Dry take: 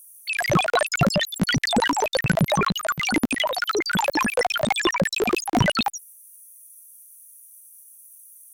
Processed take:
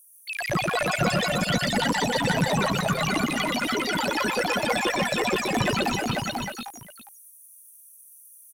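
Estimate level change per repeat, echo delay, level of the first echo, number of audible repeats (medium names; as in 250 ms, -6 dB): no regular repeats, 123 ms, -4.0 dB, 7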